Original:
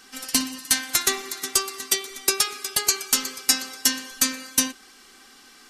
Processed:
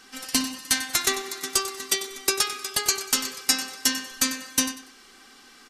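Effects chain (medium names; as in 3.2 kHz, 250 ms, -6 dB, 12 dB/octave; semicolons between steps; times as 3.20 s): treble shelf 7.7 kHz -5.5 dB; on a send: feedback delay 95 ms, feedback 27%, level -13 dB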